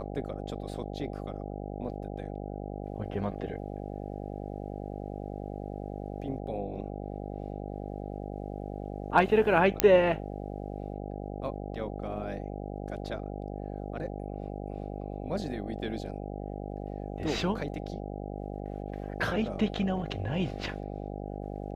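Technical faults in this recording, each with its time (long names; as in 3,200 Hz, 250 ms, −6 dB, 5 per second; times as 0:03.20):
mains buzz 50 Hz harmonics 16 −38 dBFS
0:09.80: click −4 dBFS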